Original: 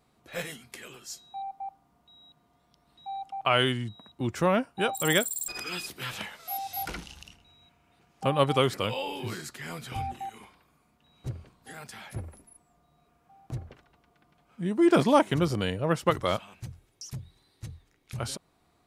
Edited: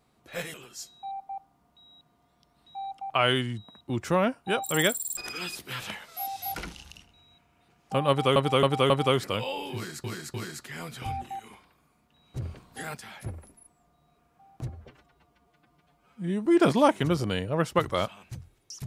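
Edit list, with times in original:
0:00.54–0:00.85: remove
0:08.40–0:08.67: repeat, 4 plays
0:09.24–0:09.54: repeat, 3 plays
0:11.32–0:11.85: clip gain +7 dB
0:13.59–0:14.77: time-stretch 1.5×

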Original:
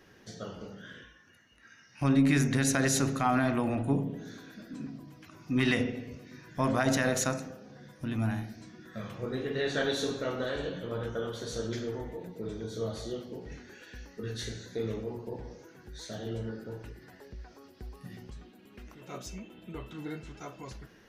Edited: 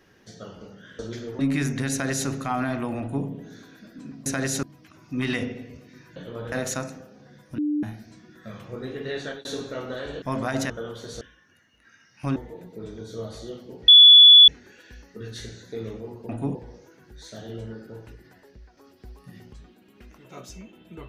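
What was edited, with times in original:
0:00.99–0:02.14: swap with 0:11.59–0:11.99
0:02.67–0:03.04: duplicate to 0:05.01
0:03.75–0:04.01: duplicate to 0:15.32
0:06.54–0:07.02: swap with 0:10.72–0:11.08
0:08.08–0:08.33: beep over 297 Hz −21.5 dBFS
0:09.59–0:09.95: fade out equal-power
0:13.51: insert tone 3,430 Hz −6.5 dBFS 0.60 s
0:17.04–0:17.54: fade out, to −6 dB

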